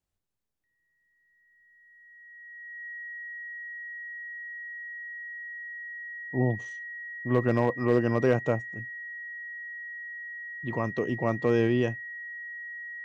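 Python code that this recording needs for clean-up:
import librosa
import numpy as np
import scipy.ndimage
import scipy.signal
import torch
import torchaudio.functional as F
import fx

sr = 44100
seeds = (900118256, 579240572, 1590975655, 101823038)

y = fx.fix_declip(x, sr, threshold_db=-13.5)
y = fx.notch(y, sr, hz=1900.0, q=30.0)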